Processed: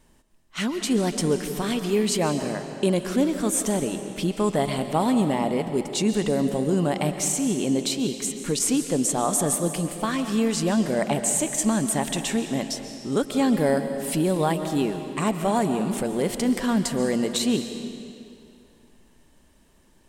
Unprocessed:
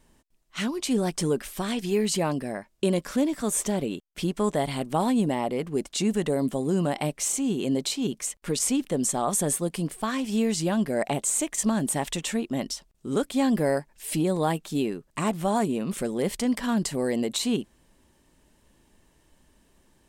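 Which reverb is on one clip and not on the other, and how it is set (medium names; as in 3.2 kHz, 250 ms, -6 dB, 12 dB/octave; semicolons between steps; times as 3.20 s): algorithmic reverb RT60 2.4 s, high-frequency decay 0.9×, pre-delay 95 ms, DRR 7.5 dB; trim +2 dB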